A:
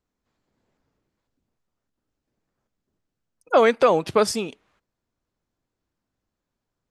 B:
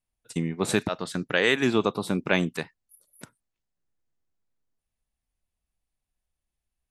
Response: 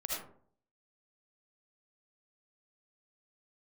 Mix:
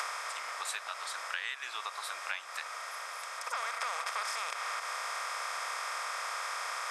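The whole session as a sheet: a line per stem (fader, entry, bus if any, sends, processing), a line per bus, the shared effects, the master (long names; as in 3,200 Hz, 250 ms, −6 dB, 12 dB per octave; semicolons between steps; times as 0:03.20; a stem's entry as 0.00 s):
−4.0 dB, 0.00 s, send −14.5 dB, compressor on every frequency bin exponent 0.2; automatic ducking −12 dB, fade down 0.40 s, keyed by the second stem
−1.5 dB, 0.00 s, no send, no processing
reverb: on, RT60 0.55 s, pre-delay 35 ms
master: high-pass filter 1,000 Hz 24 dB per octave; downward compressor 5 to 1, threshold −34 dBFS, peak gain reduction 14.5 dB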